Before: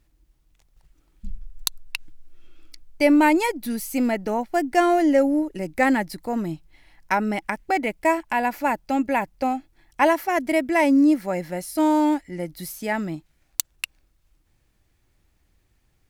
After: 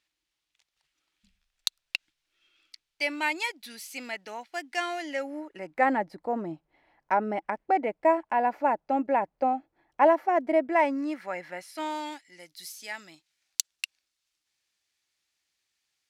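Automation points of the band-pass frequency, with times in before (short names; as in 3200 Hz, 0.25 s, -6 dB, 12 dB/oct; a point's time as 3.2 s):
band-pass, Q 1
5.07 s 3400 Hz
6.04 s 640 Hz
10.6 s 640 Hz
11.03 s 1700 Hz
11.55 s 1700 Hz
12.28 s 4800 Hz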